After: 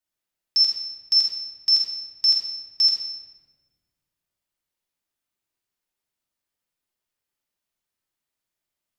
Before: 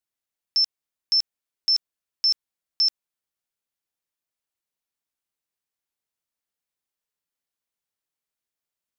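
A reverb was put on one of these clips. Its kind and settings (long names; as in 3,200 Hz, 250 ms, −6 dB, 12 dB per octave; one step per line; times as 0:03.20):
rectangular room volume 1,100 cubic metres, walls mixed, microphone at 2.7 metres
level −1.5 dB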